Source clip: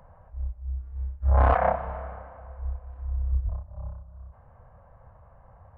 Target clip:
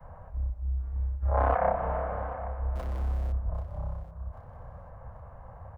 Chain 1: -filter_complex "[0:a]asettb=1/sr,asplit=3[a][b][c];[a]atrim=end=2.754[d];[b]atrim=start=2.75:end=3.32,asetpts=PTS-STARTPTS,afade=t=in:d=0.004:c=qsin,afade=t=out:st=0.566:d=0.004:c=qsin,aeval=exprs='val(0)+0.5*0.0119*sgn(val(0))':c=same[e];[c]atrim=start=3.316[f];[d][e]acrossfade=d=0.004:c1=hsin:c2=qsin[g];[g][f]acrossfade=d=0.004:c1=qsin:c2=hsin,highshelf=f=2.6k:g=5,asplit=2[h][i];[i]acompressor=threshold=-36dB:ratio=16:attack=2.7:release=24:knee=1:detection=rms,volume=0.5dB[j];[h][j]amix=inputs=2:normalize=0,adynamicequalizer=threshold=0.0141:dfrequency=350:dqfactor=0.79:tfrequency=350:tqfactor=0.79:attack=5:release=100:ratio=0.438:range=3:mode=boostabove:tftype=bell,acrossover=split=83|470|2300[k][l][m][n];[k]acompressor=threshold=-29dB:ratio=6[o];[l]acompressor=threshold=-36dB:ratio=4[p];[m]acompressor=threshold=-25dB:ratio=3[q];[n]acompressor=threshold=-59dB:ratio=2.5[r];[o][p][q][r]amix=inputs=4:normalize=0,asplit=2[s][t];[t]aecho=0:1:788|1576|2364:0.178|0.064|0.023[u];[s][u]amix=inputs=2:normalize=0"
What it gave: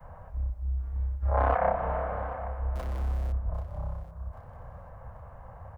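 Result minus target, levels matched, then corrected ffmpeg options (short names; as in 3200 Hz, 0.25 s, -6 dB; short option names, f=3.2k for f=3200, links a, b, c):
4000 Hz band +3.0 dB
-filter_complex "[0:a]asettb=1/sr,asplit=3[a][b][c];[a]atrim=end=2.754[d];[b]atrim=start=2.75:end=3.32,asetpts=PTS-STARTPTS,afade=t=in:d=0.004:c=qsin,afade=t=out:st=0.566:d=0.004:c=qsin,aeval=exprs='val(0)+0.5*0.0119*sgn(val(0))':c=same[e];[c]atrim=start=3.316[f];[d][e]acrossfade=d=0.004:c1=hsin:c2=qsin[g];[g][f]acrossfade=d=0.004:c1=qsin:c2=hsin,highshelf=f=2.6k:g=-3,asplit=2[h][i];[i]acompressor=threshold=-36dB:ratio=16:attack=2.7:release=24:knee=1:detection=rms,volume=0.5dB[j];[h][j]amix=inputs=2:normalize=0,adynamicequalizer=threshold=0.0141:dfrequency=350:dqfactor=0.79:tfrequency=350:tqfactor=0.79:attack=5:release=100:ratio=0.438:range=3:mode=boostabove:tftype=bell,acrossover=split=83|470|2300[k][l][m][n];[k]acompressor=threshold=-29dB:ratio=6[o];[l]acompressor=threshold=-36dB:ratio=4[p];[m]acompressor=threshold=-25dB:ratio=3[q];[n]acompressor=threshold=-59dB:ratio=2.5[r];[o][p][q][r]amix=inputs=4:normalize=0,asplit=2[s][t];[t]aecho=0:1:788|1576|2364:0.178|0.064|0.023[u];[s][u]amix=inputs=2:normalize=0"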